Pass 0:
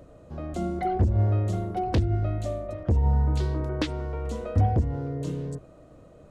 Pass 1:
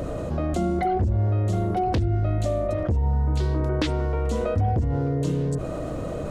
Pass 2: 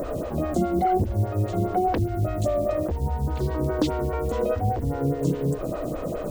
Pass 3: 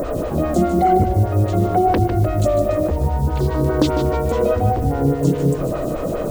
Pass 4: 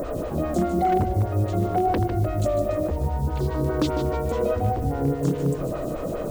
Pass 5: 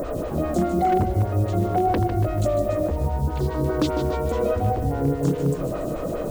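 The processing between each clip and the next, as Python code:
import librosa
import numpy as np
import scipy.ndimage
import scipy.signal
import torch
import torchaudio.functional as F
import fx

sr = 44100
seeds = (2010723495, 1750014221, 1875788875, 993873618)

y1 = fx.env_flatten(x, sr, amount_pct=70)
y1 = y1 * 10.0 ** (-2.5 / 20.0)
y2 = fx.quant_dither(y1, sr, seeds[0], bits=8, dither='none')
y2 = fx.stagger_phaser(y2, sr, hz=4.9)
y2 = y2 * 10.0 ** (3.5 / 20.0)
y3 = fx.echo_feedback(y2, sr, ms=151, feedback_pct=40, wet_db=-9)
y3 = y3 * 10.0 ** (6.5 / 20.0)
y4 = 10.0 ** (-7.5 / 20.0) * (np.abs((y3 / 10.0 ** (-7.5 / 20.0) + 3.0) % 4.0 - 2.0) - 1.0)
y4 = y4 * 10.0 ** (-6.0 / 20.0)
y5 = y4 + 10.0 ** (-14.5 / 20.0) * np.pad(y4, (int(284 * sr / 1000.0), 0))[:len(y4)]
y5 = y5 * 10.0 ** (1.0 / 20.0)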